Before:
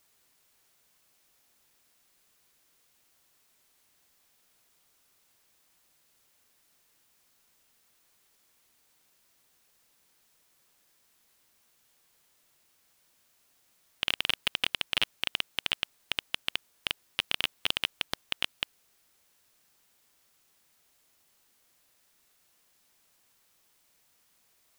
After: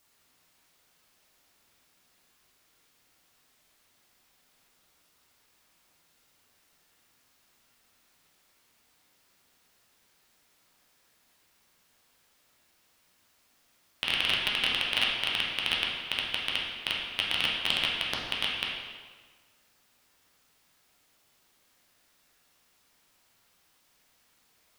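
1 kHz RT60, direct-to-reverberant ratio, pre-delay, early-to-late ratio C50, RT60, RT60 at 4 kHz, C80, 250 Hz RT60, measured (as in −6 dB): 1.5 s, −4.0 dB, 8 ms, 1.0 dB, 1.5 s, 1.2 s, 3.0 dB, 1.5 s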